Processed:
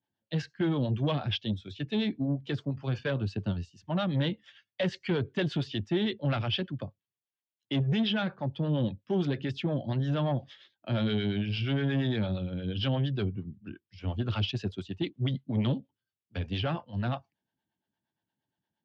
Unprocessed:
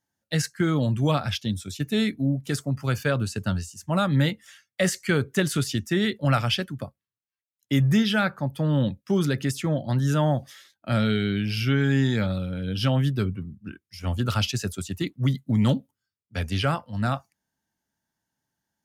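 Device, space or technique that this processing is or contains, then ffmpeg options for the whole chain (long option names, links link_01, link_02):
guitar amplifier with harmonic tremolo: -filter_complex "[0:a]asettb=1/sr,asplit=3[link_01][link_02][link_03];[link_01]atrim=end=3.444[link_04];[link_02]atrim=start=3.44:end=4.18,asetpts=PTS-STARTPTS,afade=type=in:duration=0.004:curve=qsin,afade=type=out:start_time=0.736:duration=0.004:curve=qsin,bandreject=frequency=1600:width=11[link_05];[link_03]atrim=start=4.176[link_06];[link_04][link_05]acrossfade=duration=0.004:curve1=hsin:curve2=qsin[link_07];[link_07][link_06]acrossfade=duration=0.004:curve1=qsin:curve2=hsin,acrossover=split=410[link_08][link_09];[link_08]aeval=exprs='val(0)*(1-0.7/2+0.7/2*cos(2*PI*8.6*n/s))':channel_layout=same[link_10];[link_09]aeval=exprs='val(0)*(1-0.7/2-0.7/2*cos(2*PI*8.6*n/s))':channel_layout=same[link_11];[link_10][link_11]amix=inputs=2:normalize=0,asoftclip=type=tanh:threshold=-22.5dB,highpass=98,equalizer=frequency=100:width_type=q:width=4:gain=4,equalizer=frequency=350:width_type=q:width=4:gain=4,equalizer=frequency=1300:width_type=q:width=4:gain=-7,equalizer=frequency=2000:width_type=q:width=4:gain=-5,equalizer=frequency=3200:width_type=q:width=4:gain=4,lowpass=frequency=3800:width=0.5412,lowpass=frequency=3800:width=1.3066"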